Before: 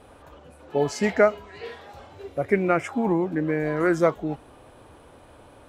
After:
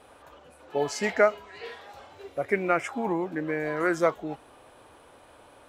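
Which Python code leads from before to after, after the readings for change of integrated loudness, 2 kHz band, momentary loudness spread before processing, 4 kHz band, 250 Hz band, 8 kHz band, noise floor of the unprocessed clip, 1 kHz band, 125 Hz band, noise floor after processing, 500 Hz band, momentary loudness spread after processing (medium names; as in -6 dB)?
-3.5 dB, -0.5 dB, 18 LU, 0.0 dB, -6.5 dB, 0.0 dB, -51 dBFS, -1.5 dB, -9.0 dB, -54 dBFS, -3.5 dB, 18 LU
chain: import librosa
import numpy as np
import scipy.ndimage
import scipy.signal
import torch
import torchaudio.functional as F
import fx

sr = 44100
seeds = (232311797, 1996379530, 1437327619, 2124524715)

y = fx.low_shelf(x, sr, hz=330.0, db=-11.5)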